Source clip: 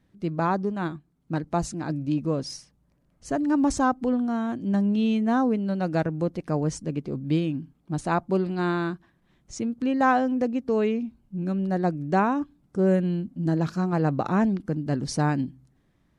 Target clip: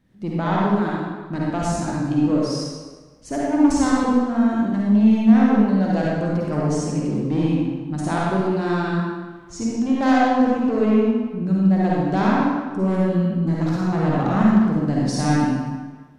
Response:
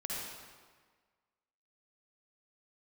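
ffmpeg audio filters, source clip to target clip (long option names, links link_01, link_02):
-filter_complex "[0:a]equalizer=frequency=240:width=2.4:gain=2.5,aeval=exprs='0.316*(cos(1*acos(clip(val(0)/0.316,-1,1)))-cos(1*PI/2))+0.0126*(cos(4*acos(clip(val(0)/0.316,-1,1)))-cos(4*PI/2))+0.0501*(cos(5*acos(clip(val(0)/0.316,-1,1)))-cos(5*PI/2))':channel_layout=same[link_01];[1:a]atrim=start_sample=2205,asetrate=48510,aresample=44100[link_02];[link_01][link_02]afir=irnorm=-1:irlink=0"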